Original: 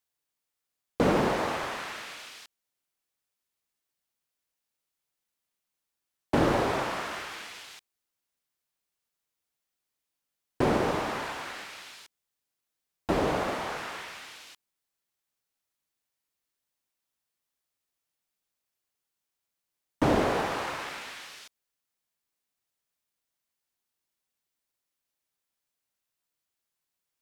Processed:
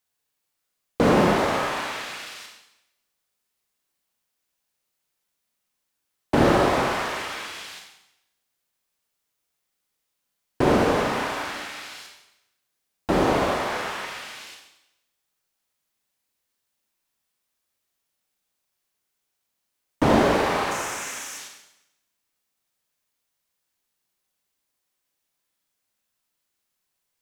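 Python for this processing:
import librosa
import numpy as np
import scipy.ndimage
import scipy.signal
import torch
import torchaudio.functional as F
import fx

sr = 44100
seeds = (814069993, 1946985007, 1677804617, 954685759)

y = fx.high_shelf_res(x, sr, hz=5300.0, db=7.0, q=3.0, at=(20.71, 21.38))
y = fx.rev_schroeder(y, sr, rt60_s=0.84, comb_ms=30, drr_db=1.0)
y = y * librosa.db_to_amplitude(4.0)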